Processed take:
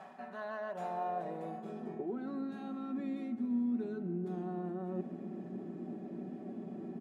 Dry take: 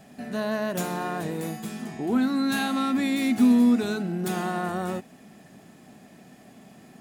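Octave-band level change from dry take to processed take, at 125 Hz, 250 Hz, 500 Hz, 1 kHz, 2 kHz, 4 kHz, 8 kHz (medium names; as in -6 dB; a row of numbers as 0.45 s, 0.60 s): -10.0 dB, -13.5 dB, -9.0 dB, -9.5 dB, -18.5 dB, under -25 dB, under -30 dB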